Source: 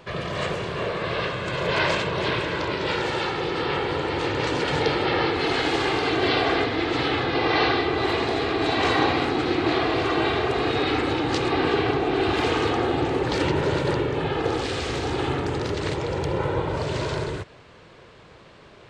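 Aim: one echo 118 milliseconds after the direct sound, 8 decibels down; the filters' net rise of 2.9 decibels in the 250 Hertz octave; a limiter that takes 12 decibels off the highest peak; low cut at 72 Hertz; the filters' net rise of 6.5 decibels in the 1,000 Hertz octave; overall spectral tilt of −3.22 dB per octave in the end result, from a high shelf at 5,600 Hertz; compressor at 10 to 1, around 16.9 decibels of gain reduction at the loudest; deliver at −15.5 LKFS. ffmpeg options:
ffmpeg -i in.wav -af "highpass=72,equalizer=frequency=250:width_type=o:gain=3.5,equalizer=frequency=1000:width_type=o:gain=8,highshelf=frequency=5600:gain=6.5,acompressor=threshold=-30dB:ratio=10,alimiter=level_in=8dB:limit=-24dB:level=0:latency=1,volume=-8dB,aecho=1:1:118:0.398,volume=24dB" out.wav

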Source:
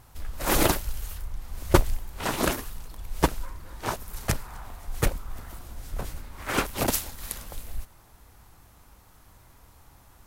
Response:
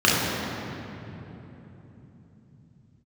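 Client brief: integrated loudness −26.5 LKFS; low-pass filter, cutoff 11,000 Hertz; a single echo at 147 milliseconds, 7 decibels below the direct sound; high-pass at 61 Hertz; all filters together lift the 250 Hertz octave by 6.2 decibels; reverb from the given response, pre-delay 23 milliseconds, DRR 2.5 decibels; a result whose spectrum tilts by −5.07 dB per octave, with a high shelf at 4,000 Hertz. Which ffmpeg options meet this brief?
-filter_complex "[0:a]highpass=61,lowpass=11000,equalizer=frequency=250:width_type=o:gain=8.5,highshelf=frequency=4000:gain=4,aecho=1:1:147:0.447,asplit=2[link_01][link_02];[1:a]atrim=start_sample=2205,adelay=23[link_03];[link_02][link_03]afir=irnorm=-1:irlink=0,volume=-24.5dB[link_04];[link_01][link_04]amix=inputs=2:normalize=0,volume=-2.5dB"

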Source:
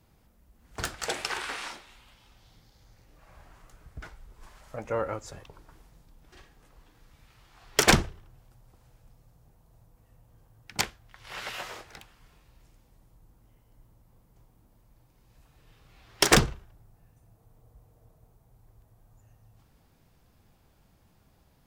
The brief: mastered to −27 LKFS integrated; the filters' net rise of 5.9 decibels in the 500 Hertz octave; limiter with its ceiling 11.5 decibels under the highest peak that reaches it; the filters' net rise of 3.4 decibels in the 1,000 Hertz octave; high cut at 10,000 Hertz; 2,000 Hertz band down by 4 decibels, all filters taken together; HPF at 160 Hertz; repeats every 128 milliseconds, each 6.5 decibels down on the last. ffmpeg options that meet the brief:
ffmpeg -i in.wav -af "highpass=160,lowpass=10000,equalizer=frequency=500:width_type=o:gain=6.5,equalizer=frequency=1000:width_type=o:gain=4,equalizer=frequency=2000:width_type=o:gain=-7,alimiter=limit=-13.5dB:level=0:latency=1,aecho=1:1:128|256|384|512|640|768:0.473|0.222|0.105|0.0491|0.0231|0.0109,volume=4.5dB" out.wav

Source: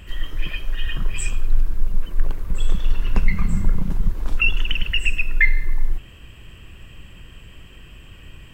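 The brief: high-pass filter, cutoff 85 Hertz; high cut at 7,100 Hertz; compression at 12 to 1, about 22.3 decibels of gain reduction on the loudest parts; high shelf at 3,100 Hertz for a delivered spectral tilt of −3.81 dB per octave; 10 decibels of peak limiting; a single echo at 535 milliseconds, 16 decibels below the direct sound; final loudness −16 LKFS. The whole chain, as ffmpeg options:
ffmpeg -i in.wav -af "highpass=85,lowpass=7100,highshelf=frequency=3100:gain=-7,acompressor=threshold=-38dB:ratio=12,alimiter=level_in=10dB:limit=-24dB:level=0:latency=1,volume=-10dB,aecho=1:1:535:0.158,volume=29.5dB" out.wav

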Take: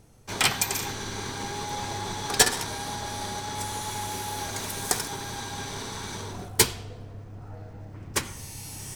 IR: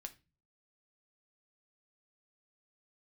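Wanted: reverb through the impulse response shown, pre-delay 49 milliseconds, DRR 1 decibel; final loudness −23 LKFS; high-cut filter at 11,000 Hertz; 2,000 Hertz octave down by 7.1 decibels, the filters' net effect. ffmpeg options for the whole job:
-filter_complex "[0:a]lowpass=11000,equalizer=frequency=2000:width_type=o:gain=-9,asplit=2[link_01][link_02];[1:a]atrim=start_sample=2205,adelay=49[link_03];[link_02][link_03]afir=irnorm=-1:irlink=0,volume=4dB[link_04];[link_01][link_04]amix=inputs=2:normalize=0,volume=5dB"

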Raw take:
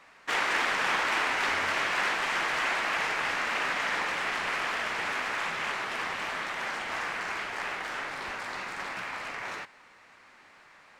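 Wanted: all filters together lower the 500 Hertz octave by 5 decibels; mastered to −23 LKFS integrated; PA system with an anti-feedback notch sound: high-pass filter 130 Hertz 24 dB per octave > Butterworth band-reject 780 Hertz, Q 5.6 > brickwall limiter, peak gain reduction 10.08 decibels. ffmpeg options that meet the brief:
ffmpeg -i in.wav -af "highpass=frequency=130:width=0.5412,highpass=frequency=130:width=1.3066,asuperstop=centerf=780:order=8:qfactor=5.6,equalizer=frequency=500:width_type=o:gain=-6.5,volume=10.5dB,alimiter=limit=-15dB:level=0:latency=1" out.wav

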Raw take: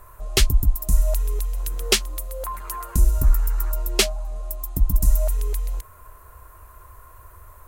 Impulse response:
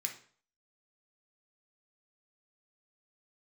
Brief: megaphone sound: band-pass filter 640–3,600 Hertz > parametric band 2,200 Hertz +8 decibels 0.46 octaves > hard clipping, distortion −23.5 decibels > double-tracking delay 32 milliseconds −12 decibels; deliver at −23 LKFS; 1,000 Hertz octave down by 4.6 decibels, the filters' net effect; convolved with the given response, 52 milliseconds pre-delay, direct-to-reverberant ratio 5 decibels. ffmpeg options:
-filter_complex "[0:a]equalizer=frequency=1000:width_type=o:gain=-5,asplit=2[link_01][link_02];[1:a]atrim=start_sample=2205,adelay=52[link_03];[link_02][link_03]afir=irnorm=-1:irlink=0,volume=-5dB[link_04];[link_01][link_04]amix=inputs=2:normalize=0,highpass=640,lowpass=3600,equalizer=frequency=2200:width_type=o:width=0.46:gain=8,asoftclip=type=hard:threshold=-10dB,asplit=2[link_05][link_06];[link_06]adelay=32,volume=-12dB[link_07];[link_05][link_07]amix=inputs=2:normalize=0,volume=4.5dB"

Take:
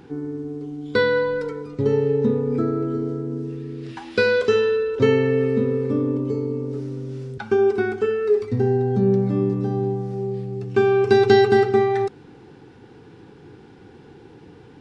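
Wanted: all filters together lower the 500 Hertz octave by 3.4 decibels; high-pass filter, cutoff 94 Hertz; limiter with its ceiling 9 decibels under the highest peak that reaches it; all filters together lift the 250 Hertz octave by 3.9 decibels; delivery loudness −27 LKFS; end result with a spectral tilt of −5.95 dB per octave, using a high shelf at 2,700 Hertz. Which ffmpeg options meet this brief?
ffmpeg -i in.wav -af "highpass=94,equalizer=frequency=250:width_type=o:gain=7.5,equalizer=frequency=500:width_type=o:gain=-7.5,highshelf=frequency=2700:gain=-8.5,volume=-3.5dB,alimiter=limit=-16dB:level=0:latency=1" out.wav

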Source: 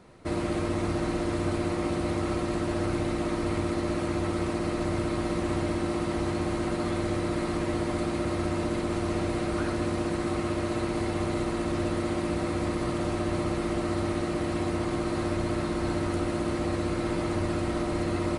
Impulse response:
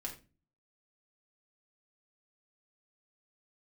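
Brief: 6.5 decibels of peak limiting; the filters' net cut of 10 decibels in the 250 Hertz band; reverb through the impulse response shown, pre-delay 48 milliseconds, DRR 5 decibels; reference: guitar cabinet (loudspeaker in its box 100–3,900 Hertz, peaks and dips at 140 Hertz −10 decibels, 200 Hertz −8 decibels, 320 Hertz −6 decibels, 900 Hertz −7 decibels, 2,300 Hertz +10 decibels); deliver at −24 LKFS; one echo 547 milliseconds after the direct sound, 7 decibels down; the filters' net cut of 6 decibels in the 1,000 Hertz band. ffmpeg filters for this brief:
-filter_complex "[0:a]equalizer=frequency=250:width_type=o:gain=-7,equalizer=frequency=1000:width_type=o:gain=-5,alimiter=limit=-24dB:level=0:latency=1,aecho=1:1:547:0.447,asplit=2[link_01][link_02];[1:a]atrim=start_sample=2205,adelay=48[link_03];[link_02][link_03]afir=irnorm=-1:irlink=0,volume=-4dB[link_04];[link_01][link_04]amix=inputs=2:normalize=0,highpass=100,equalizer=frequency=140:width_type=q:width=4:gain=-10,equalizer=frequency=200:width_type=q:width=4:gain=-8,equalizer=frequency=320:width_type=q:width=4:gain=-6,equalizer=frequency=900:width_type=q:width=4:gain=-7,equalizer=frequency=2300:width_type=q:width=4:gain=10,lowpass=frequency=3900:width=0.5412,lowpass=frequency=3900:width=1.3066,volume=10.5dB"

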